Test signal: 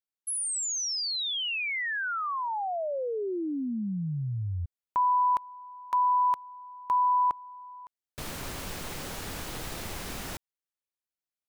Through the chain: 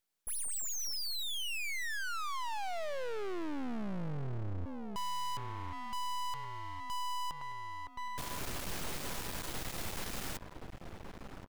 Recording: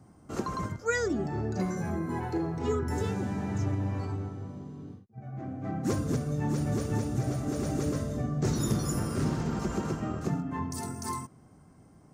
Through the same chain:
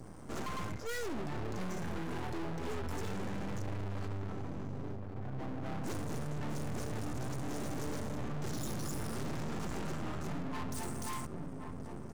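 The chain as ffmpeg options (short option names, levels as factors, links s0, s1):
-filter_complex "[0:a]asplit=2[s0][s1];[s1]adelay=1074,lowpass=f=950:p=1,volume=0.224,asplit=2[s2][s3];[s3]adelay=1074,lowpass=f=950:p=1,volume=0.43,asplit=2[s4][s5];[s5]adelay=1074,lowpass=f=950:p=1,volume=0.43,asplit=2[s6][s7];[s7]adelay=1074,lowpass=f=950:p=1,volume=0.43[s8];[s0][s2][s4][s6][s8]amix=inputs=5:normalize=0,aeval=exprs='(tanh(63.1*val(0)+0.65)-tanh(0.65))/63.1':c=same,aeval=exprs='max(val(0),0)':c=same,asplit=2[s9][s10];[s10]alimiter=level_in=35.5:limit=0.0631:level=0:latency=1:release=153,volume=0.0282,volume=1[s11];[s9][s11]amix=inputs=2:normalize=0,volume=2.99"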